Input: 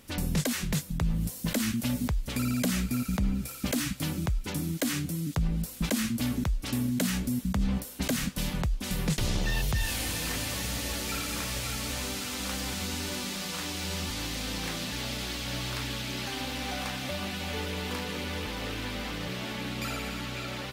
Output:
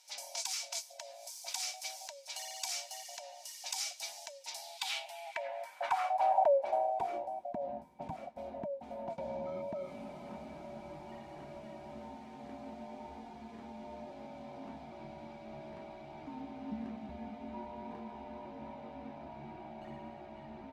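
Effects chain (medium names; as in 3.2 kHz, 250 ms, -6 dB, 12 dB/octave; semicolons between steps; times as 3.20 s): split-band scrambler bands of 500 Hz; small resonant body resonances 930/2300 Hz, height 17 dB, ringing for 90 ms; band-pass sweep 5.6 kHz -> 210 Hz, 4.46–7.66 s; trim +2.5 dB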